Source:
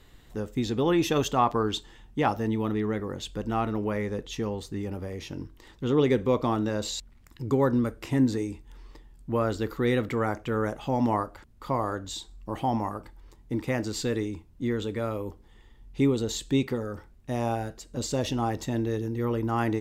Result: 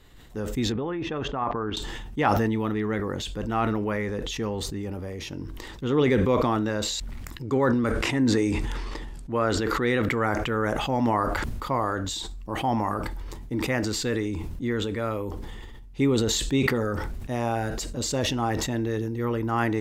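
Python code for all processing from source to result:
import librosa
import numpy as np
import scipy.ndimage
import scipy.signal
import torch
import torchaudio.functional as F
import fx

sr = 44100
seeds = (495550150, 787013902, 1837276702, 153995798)

y = fx.chain(x, sr, fx.lowpass(hz=2000.0, slope=12),
    fx.level_steps(step_db=10), at=(0.72, 1.77))
y = fx.chain(y, sr, fx.lowpass(hz=9800.0, slope=12),
    fx.low_shelf(hz=150.0, db=-5.0),
    fx.sustainer(db_per_s=20.0), at=(7.42, 10.02))
y = fx.dynamic_eq(y, sr, hz=1700.0, q=1.1, threshold_db=-44.0, ratio=4.0, max_db=5)
y = fx.sustainer(y, sr, db_per_s=21.0)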